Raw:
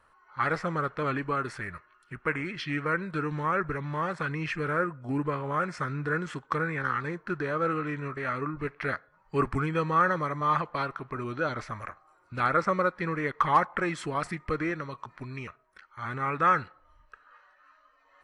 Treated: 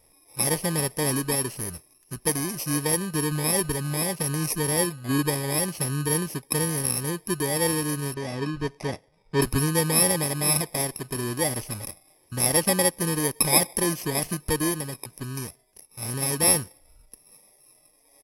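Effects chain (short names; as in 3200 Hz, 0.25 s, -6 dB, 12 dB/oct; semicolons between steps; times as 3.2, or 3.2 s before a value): FFT order left unsorted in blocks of 32 samples; downsampling 32000 Hz; 8.14–9.42 air absorption 120 m; gain +6 dB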